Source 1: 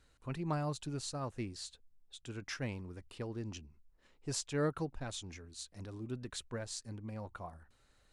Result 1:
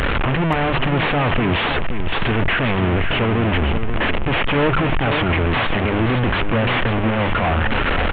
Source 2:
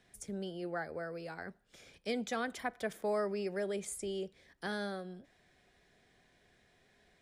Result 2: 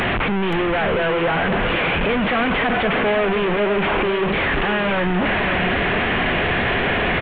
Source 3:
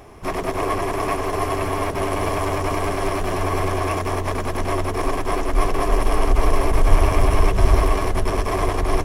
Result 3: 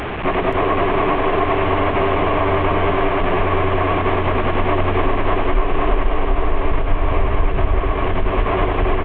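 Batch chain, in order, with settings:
delta modulation 16 kbps, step -27 dBFS; notches 50/100/150 Hz; compressor 6:1, threshold -22 dBFS; on a send: echo 0.526 s -8 dB; on the sum: match loudness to -19 LUFS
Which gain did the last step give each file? +15.5, +13.5, +8.5 dB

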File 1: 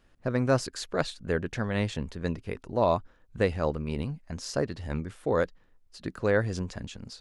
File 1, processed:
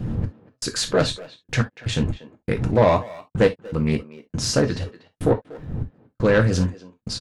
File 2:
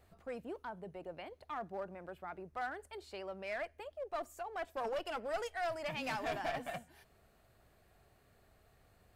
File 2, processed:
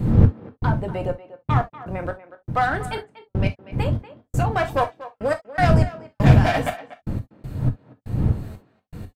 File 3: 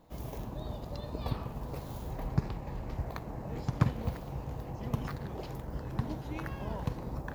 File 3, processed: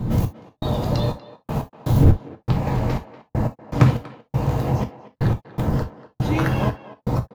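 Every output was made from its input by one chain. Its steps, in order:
wind noise 110 Hz -33 dBFS; HPF 44 Hz 6 dB/oct; in parallel at +1.5 dB: compressor, threshold -38 dBFS; on the sum: soft clip -18 dBFS; step gate "xx...xxxx...x.." 121 bpm -60 dB; speakerphone echo 0.24 s, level -15 dB; non-linear reverb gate 90 ms falling, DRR 4.5 dB; Doppler distortion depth 0.19 ms; match loudness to -23 LUFS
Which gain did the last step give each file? +8.0, +12.5, +12.0 dB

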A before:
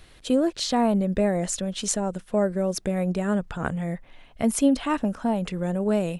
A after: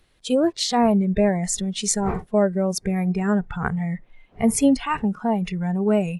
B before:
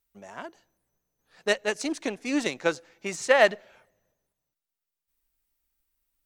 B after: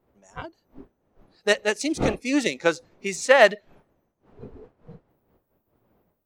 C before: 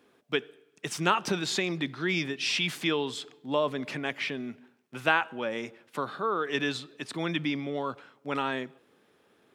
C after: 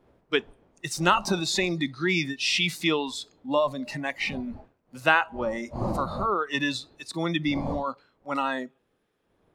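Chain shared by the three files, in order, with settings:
wind noise 520 Hz -43 dBFS; spectral noise reduction 15 dB; gain +4 dB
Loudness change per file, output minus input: +3.0, +4.0, +3.5 LU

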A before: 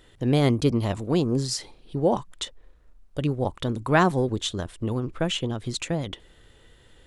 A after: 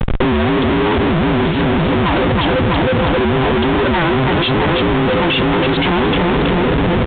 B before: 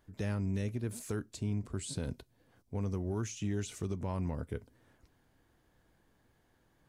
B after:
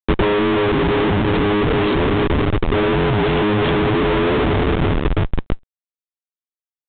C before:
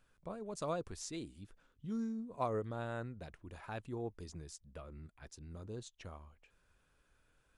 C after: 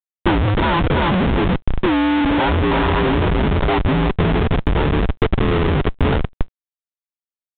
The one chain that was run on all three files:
band inversion scrambler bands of 500 Hz; HPF 44 Hz 24 dB/oct; bell 380 Hz -2.5 dB 0.37 oct; feedback echo 0.325 s, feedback 56%, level -11.5 dB; soft clip -23.5 dBFS; tilt -1.5 dB/oct; Schmitt trigger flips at -46.5 dBFS; transient shaper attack +4 dB, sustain -2 dB; µ-law 64 kbps 8000 Hz; normalise peaks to -6 dBFS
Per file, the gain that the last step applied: +15.5, +22.0, +27.0 dB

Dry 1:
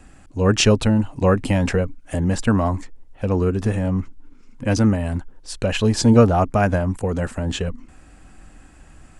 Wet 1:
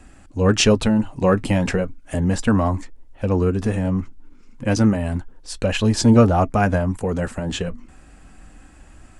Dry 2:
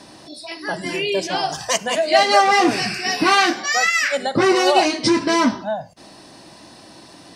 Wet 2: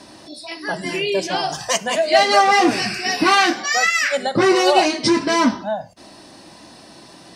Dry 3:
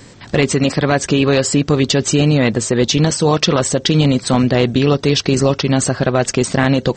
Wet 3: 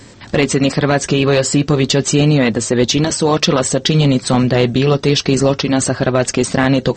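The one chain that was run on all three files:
in parallel at -7 dB: one-sided clip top -8.5 dBFS, bottom -5 dBFS; on the sum: flange 0.33 Hz, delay 3 ms, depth 2.9 ms, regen -70%; normalise peaks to -2 dBFS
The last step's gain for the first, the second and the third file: +1.5, +1.5, +2.0 dB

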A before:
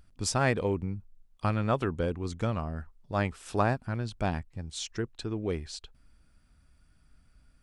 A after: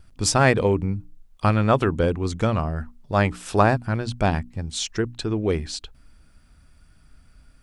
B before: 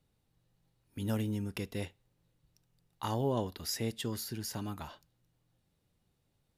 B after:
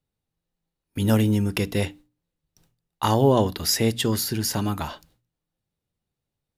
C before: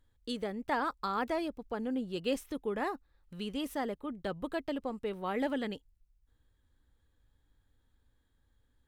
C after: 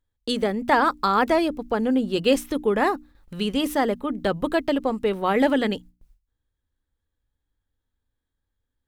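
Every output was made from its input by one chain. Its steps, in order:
gate with hold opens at -58 dBFS; notches 60/120/180/240/300 Hz; match loudness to -23 LUFS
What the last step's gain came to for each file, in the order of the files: +9.0, +14.0, +13.0 dB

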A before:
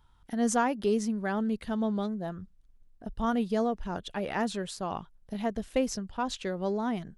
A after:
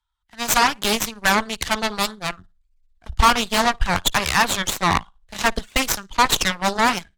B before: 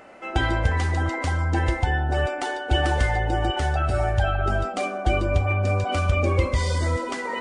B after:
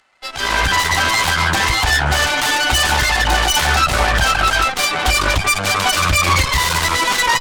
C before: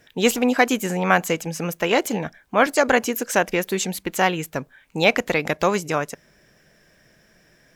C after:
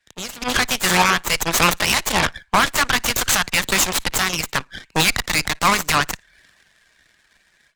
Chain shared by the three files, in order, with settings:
median filter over 9 samples; graphic EQ 125/250/500/1000/2000/4000/8000 Hz -11/-10/-11/+5/+5/+12/+10 dB; compressor 3:1, threshold -27 dBFS; limiter -20.5 dBFS; flutter echo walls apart 9.7 m, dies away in 0.31 s; AGC gain up to 10.5 dB; reverb removal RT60 0.62 s; added harmonics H 5 -28 dB, 7 -21 dB, 8 -11 dB, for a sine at -9 dBFS; dynamic EQ 1100 Hz, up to +3 dB, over -37 dBFS, Q 2.1; three-band expander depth 40%; gain +3 dB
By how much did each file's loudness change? +11.0, +9.0, +3.0 LU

